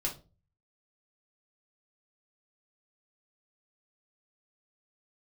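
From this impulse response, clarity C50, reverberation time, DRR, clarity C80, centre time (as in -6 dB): 11.5 dB, 0.35 s, -1.5 dB, 19.5 dB, 18 ms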